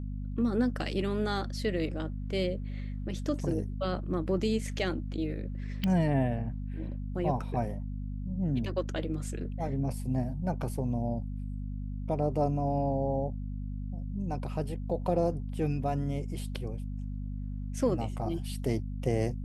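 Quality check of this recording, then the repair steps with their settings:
hum 50 Hz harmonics 5 -36 dBFS
5.84 s: pop -19 dBFS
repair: de-click; de-hum 50 Hz, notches 5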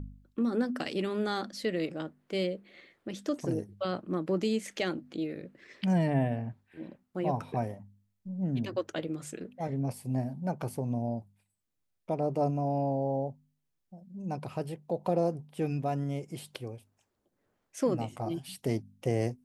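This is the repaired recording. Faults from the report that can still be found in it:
nothing left

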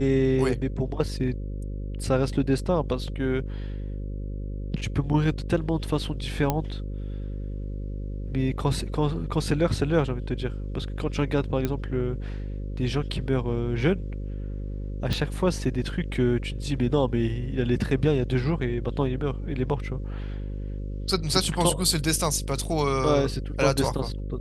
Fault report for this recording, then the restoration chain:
buzz 50 Hz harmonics 11 -32 dBFS
6.50 s: pop -10 dBFS
11.65 s: pop -13 dBFS
15.13 s: pop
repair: de-click; de-hum 50 Hz, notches 11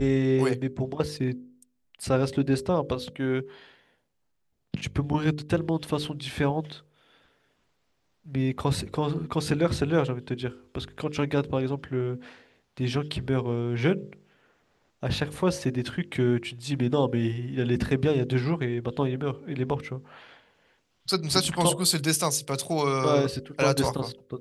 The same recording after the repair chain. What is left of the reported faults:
nothing left

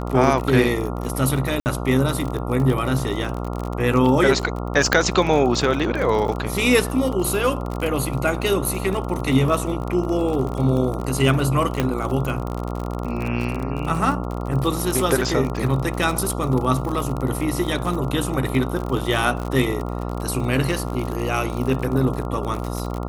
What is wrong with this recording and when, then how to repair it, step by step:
buzz 60 Hz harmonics 23 -27 dBFS
crackle 44 per s -25 dBFS
1.60–1.66 s: dropout 59 ms
4.93 s: pop -2 dBFS
11.80 s: pop -7 dBFS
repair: de-click; de-hum 60 Hz, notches 23; interpolate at 1.60 s, 59 ms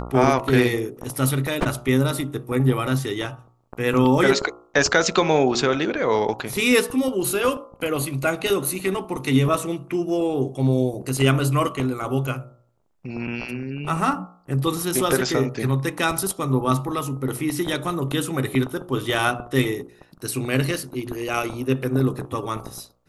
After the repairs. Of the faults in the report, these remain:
11.80 s: pop

